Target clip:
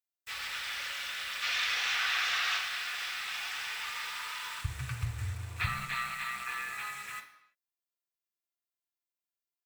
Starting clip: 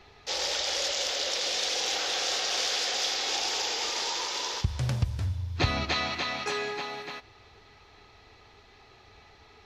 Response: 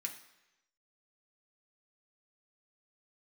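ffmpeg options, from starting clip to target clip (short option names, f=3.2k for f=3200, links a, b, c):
-filter_complex "[0:a]firequalizer=gain_entry='entry(130,0);entry(190,-27);entry(1200,5);entry(4600,-8);entry(11000,-29)':delay=0.05:min_phase=1,asettb=1/sr,asplit=3[a][b][c];[a]atrim=end=1.424[d];[b]atrim=start=1.42:end=2.58,asetpts=PTS-STARTPTS,afade=t=in:d=0.004:c=qsin,afade=t=out:st=1.156:d=0.004:c=qsin,acontrast=57[e];[c]atrim=start=2.576[f];[d][e]acrossfade=d=0.004:c1=hsin:c2=qsin[g];[g][f]acrossfade=d=0.004:c1=qsin:c2=hsin,asettb=1/sr,asplit=3[h][i][j];[h]atrim=end=5.664[k];[i]atrim=start=5.66:end=6.73,asetpts=PTS-STARTPTS,afade=t=in:d=0.004:c=qsin,afade=t=out:st=1.066:d=0.004:c=qsin,aeval=exprs='val(0)*sin(2*PI*63*n/s)':c=same[l];[j]atrim=start=6.726[m];[k][l]acrossfade=d=0.004:c1=hsin:c2=qsin[n];[n][m]acrossfade=d=0.004:c1=qsin:c2=hsin,acrusher=bits=6:mix=0:aa=0.000001[o];[1:a]atrim=start_sample=2205,afade=t=out:st=0.4:d=0.01,atrim=end_sample=18081[p];[o][p]afir=irnorm=-1:irlink=0,volume=-2dB" -ar 44100 -c:a nellymoser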